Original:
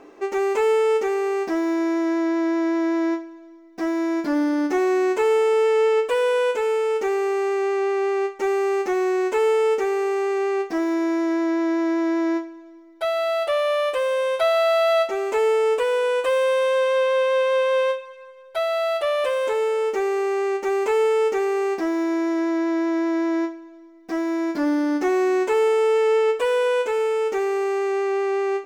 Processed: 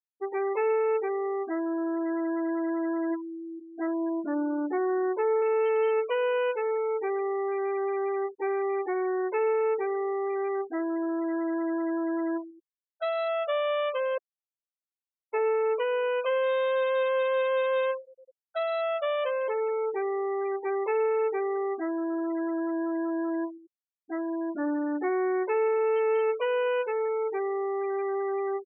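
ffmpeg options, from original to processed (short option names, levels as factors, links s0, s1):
-filter_complex "[0:a]asplit=2[s0][s1];[s1]afade=t=in:st=2.6:d=0.01,afade=t=out:st=3.09:d=0.01,aecho=0:1:500|1000|1500|2000|2500|3000|3500:0.281838|0.169103|0.101462|0.0608771|0.0365262|0.0219157|0.0131494[s2];[s0][s2]amix=inputs=2:normalize=0,asettb=1/sr,asplit=3[s3][s4][s5];[s3]atrim=end=3.874[s6];[s4]atrim=start=3.87:end=5.42,asetpts=PTS-STARTPTS,afade=t=in:d=0.004:c=qsin,afade=t=out:st=1.546:d=0.004:c=qsin,lowpass=1900[s7];[s5]atrim=start=5.416[s8];[s6][s7]acrossfade=d=0.004:c1=hsin:c2=qsin[s9];[s9][s8]acrossfade=d=0.004:c1=qsin:c2=hsin,asplit=3[s10][s11][s12];[s10]atrim=end=14.18,asetpts=PTS-STARTPTS,afade=t=out:st=14.176:d=0.004:c=hsin[s13];[s11]atrim=start=14.18:end=15.33,asetpts=PTS-STARTPTS,volume=0[s14];[s12]atrim=start=15.33,asetpts=PTS-STARTPTS,afade=t=in:d=0.004:c=hsin[s15];[s13][s14][s15]concat=n=3:v=0:a=1,lowshelf=f=190:g=-9,afftfilt=real='re*gte(hypot(re,im),0.0794)':imag='im*gte(hypot(re,im),0.0794)':win_size=1024:overlap=0.75,volume=0.562"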